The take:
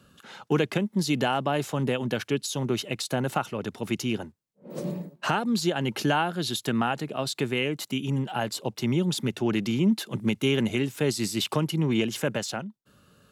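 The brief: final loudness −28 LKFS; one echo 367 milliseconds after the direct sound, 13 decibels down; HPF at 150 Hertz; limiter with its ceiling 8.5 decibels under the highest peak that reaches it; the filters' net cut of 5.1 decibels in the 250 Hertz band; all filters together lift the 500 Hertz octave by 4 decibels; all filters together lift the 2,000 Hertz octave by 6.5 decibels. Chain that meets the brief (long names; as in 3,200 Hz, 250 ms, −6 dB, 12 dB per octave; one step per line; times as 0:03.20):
high-pass filter 150 Hz
parametric band 250 Hz −8.5 dB
parametric band 500 Hz +7.5 dB
parametric band 2,000 Hz +8.5 dB
brickwall limiter −16.5 dBFS
single-tap delay 367 ms −13 dB
level +0.5 dB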